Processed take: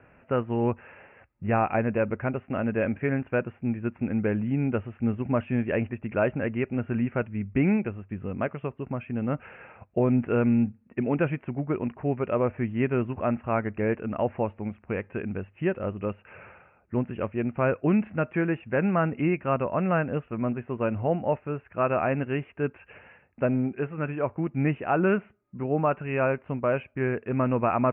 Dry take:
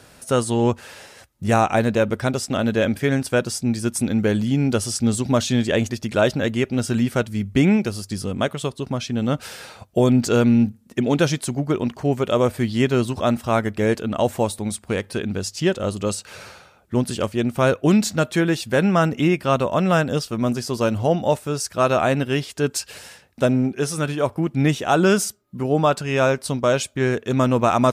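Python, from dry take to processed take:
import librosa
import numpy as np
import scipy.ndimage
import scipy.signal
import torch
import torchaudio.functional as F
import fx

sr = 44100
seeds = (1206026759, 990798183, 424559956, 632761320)

y = scipy.signal.sosfilt(scipy.signal.butter(16, 2700.0, 'lowpass', fs=sr, output='sos'), x)
y = y * 10.0 ** (-6.5 / 20.0)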